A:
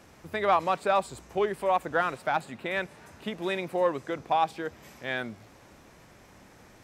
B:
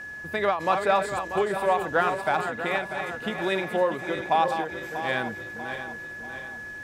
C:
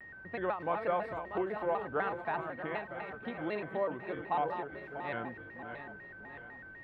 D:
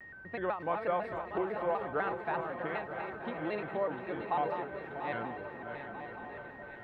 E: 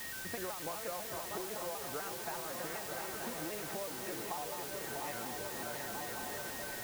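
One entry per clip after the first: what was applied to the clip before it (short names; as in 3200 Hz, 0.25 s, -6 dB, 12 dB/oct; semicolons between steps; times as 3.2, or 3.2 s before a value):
regenerating reverse delay 0.32 s, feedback 67%, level -8 dB; whine 1700 Hz -39 dBFS; ending taper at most 120 dB/s; gain +3 dB
air absorption 490 m; shaped vibrato square 4 Hz, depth 160 cents; gain -8 dB
swung echo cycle 0.931 s, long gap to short 3:1, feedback 59%, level -11 dB
compressor 10:1, threshold -42 dBFS, peak gain reduction 15 dB; requantised 8-bit, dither triangular; gain +3 dB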